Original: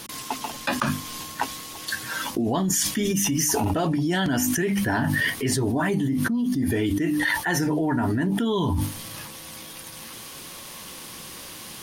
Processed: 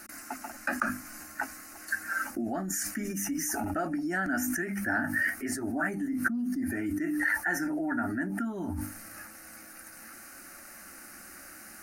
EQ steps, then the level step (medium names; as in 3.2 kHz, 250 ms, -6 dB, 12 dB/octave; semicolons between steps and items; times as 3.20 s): peaking EQ 1.4 kHz +9.5 dB 0.61 oct; dynamic bell 3.7 kHz, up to -6 dB, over -45 dBFS, Q 2; static phaser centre 680 Hz, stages 8; -6.5 dB